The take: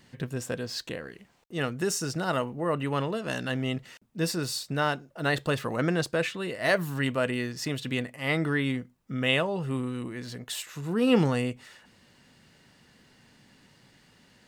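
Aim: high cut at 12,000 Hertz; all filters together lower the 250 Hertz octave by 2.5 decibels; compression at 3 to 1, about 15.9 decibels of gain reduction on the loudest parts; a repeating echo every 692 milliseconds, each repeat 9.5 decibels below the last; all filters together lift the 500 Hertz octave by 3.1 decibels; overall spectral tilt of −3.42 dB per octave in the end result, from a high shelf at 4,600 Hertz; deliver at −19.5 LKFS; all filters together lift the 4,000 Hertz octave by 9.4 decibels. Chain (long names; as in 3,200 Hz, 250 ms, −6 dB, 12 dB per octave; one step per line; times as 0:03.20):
low-pass filter 12,000 Hz
parametric band 250 Hz −4.5 dB
parametric band 500 Hz +4.5 dB
parametric band 4,000 Hz +8.5 dB
high-shelf EQ 4,600 Hz +8 dB
downward compressor 3 to 1, threshold −37 dBFS
repeating echo 692 ms, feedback 33%, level −9.5 dB
level +17 dB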